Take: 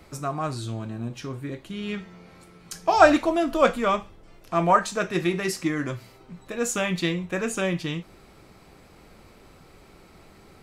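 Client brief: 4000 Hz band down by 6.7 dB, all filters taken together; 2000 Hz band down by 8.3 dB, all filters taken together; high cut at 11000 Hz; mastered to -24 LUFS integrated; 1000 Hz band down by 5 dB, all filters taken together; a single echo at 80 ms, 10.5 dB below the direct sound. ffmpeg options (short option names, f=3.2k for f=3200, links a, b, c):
-af "lowpass=11k,equalizer=f=1k:t=o:g=-4.5,equalizer=f=2k:t=o:g=-8.5,equalizer=f=4k:t=o:g=-5.5,aecho=1:1:80:0.299,volume=3.5dB"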